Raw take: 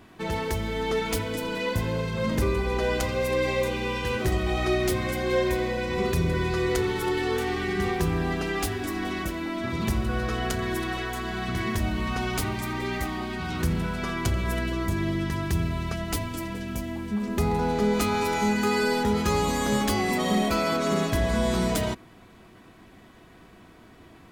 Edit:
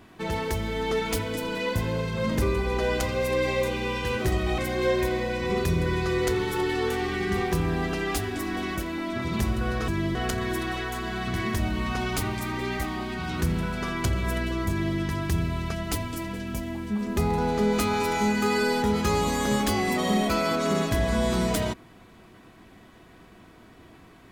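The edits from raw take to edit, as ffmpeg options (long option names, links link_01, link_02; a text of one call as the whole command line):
ffmpeg -i in.wav -filter_complex "[0:a]asplit=4[link_01][link_02][link_03][link_04];[link_01]atrim=end=4.582[link_05];[link_02]atrim=start=5.058:end=10.362[link_06];[link_03]atrim=start=14.908:end=15.182[link_07];[link_04]atrim=start=10.358[link_08];[link_05][link_06]acrossfade=duration=0.004:curve1=hsin:curve2=hsin[link_09];[link_09][link_07]acrossfade=duration=0.004:curve1=hsin:curve2=hsin[link_10];[link_10][link_08]acrossfade=duration=0.004:curve1=hsin:curve2=hsin" out.wav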